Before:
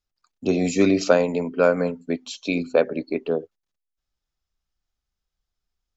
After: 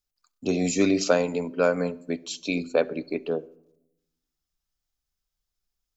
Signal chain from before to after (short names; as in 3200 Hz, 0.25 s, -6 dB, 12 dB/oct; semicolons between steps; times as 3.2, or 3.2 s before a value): high shelf 5900 Hz +11.5 dB; shoebox room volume 2600 m³, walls furnished, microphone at 0.37 m; gain -4 dB